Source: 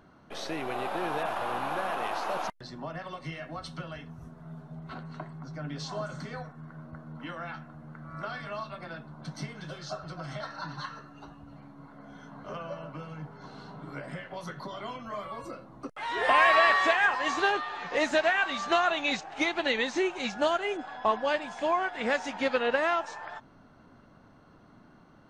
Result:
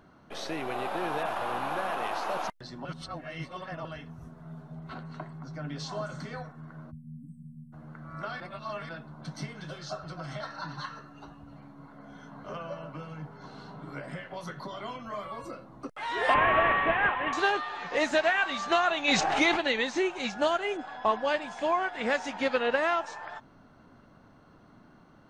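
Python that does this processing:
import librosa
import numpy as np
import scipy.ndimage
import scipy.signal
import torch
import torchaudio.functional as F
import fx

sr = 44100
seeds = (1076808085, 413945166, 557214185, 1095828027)

y = fx.brickwall_bandstop(x, sr, low_hz=270.0, high_hz=7600.0, at=(6.9, 7.72), fade=0.02)
y = fx.cvsd(y, sr, bps=16000, at=(16.34, 17.33))
y = fx.env_flatten(y, sr, amount_pct=70, at=(19.07, 19.56), fade=0.02)
y = fx.edit(y, sr, fx.reverse_span(start_s=2.85, length_s=1.0),
    fx.reverse_span(start_s=8.4, length_s=0.49), tone=tone)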